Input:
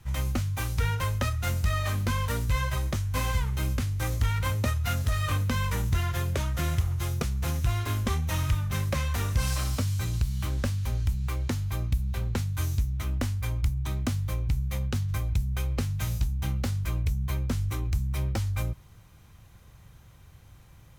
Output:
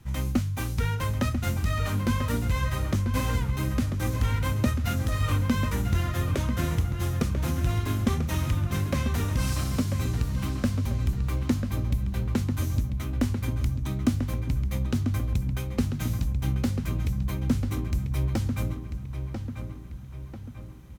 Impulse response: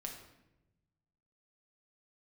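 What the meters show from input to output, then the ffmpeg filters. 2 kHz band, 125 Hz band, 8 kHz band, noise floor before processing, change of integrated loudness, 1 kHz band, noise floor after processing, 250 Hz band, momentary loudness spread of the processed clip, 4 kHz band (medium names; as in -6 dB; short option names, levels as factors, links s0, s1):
-0.5 dB, +1.0 dB, -1.5 dB, -53 dBFS, +1.0 dB, 0.0 dB, -39 dBFS, +7.5 dB, 5 LU, -1.0 dB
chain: -filter_complex "[0:a]equalizer=f=250:w=1.2:g=10,asplit=2[s0][s1];[s1]adelay=992,lowpass=f=3100:p=1,volume=0.447,asplit=2[s2][s3];[s3]adelay=992,lowpass=f=3100:p=1,volume=0.48,asplit=2[s4][s5];[s5]adelay=992,lowpass=f=3100:p=1,volume=0.48,asplit=2[s6][s7];[s7]adelay=992,lowpass=f=3100:p=1,volume=0.48,asplit=2[s8][s9];[s9]adelay=992,lowpass=f=3100:p=1,volume=0.48,asplit=2[s10][s11];[s11]adelay=992,lowpass=f=3100:p=1,volume=0.48[s12];[s2][s4][s6][s8][s10][s12]amix=inputs=6:normalize=0[s13];[s0][s13]amix=inputs=2:normalize=0,volume=0.841"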